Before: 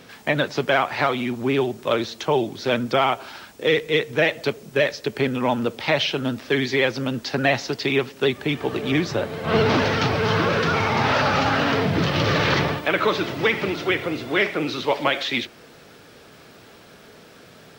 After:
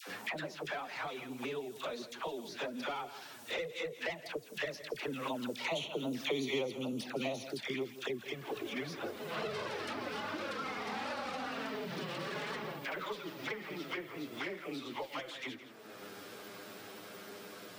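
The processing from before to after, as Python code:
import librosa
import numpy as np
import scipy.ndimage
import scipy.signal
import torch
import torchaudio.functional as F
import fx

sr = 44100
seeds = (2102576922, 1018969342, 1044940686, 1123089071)

p1 = fx.tracing_dist(x, sr, depth_ms=0.036)
p2 = fx.doppler_pass(p1, sr, speed_mps=14, closest_m=3.9, pass_at_s=6.49)
p3 = scipy.signal.sosfilt(scipy.signal.butter(2, 190.0, 'highpass', fs=sr, output='sos'), p2)
p4 = fx.high_shelf(p3, sr, hz=8300.0, db=9.5)
p5 = fx.env_flanger(p4, sr, rest_ms=10.1, full_db=-29.5)
p6 = fx.dispersion(p5, sr, late='lows', ms=77.0, hz=850.0)
p7 = p6 + fx.echo_single(p6, sr, ms=164, db=-17.0, dry=0)
p8 = fx.band_squash(p7, sr, depth_pct=100)
y = F.gain(torch.from_numpy(p8), 2.5).numpy()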